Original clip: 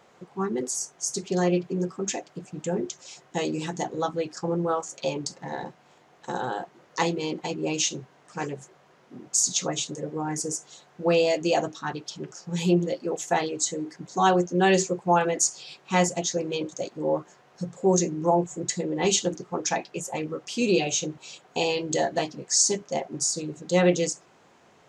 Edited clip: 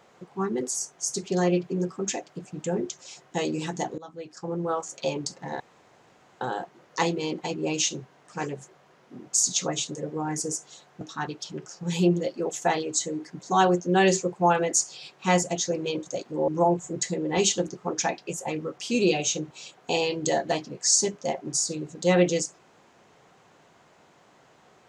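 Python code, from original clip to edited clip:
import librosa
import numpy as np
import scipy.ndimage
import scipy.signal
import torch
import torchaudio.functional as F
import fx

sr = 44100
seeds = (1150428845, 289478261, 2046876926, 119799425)

y = fx.edit(x, sr, fx.fade_in_from(start_s=3.98, length_s=0.94, floor_db=-21.5),
    fx.room_tone_fill(start_s=5.6, length_s=0.81),
    fx.cut(start_s=11.01, length_s=0.66),
    fx.cut(start_s=17.14, length_s=1.01), tone=tone)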